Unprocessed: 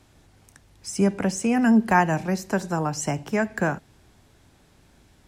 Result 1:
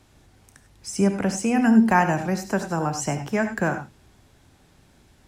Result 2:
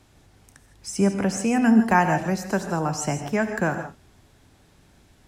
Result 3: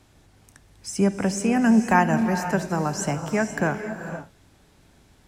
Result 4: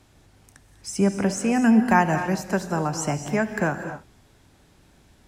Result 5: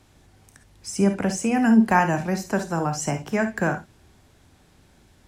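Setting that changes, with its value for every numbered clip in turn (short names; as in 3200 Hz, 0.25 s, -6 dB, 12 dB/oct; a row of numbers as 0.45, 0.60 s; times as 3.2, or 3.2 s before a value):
non-linear reverb, gate: 120, 180, 530, 270, 80 ms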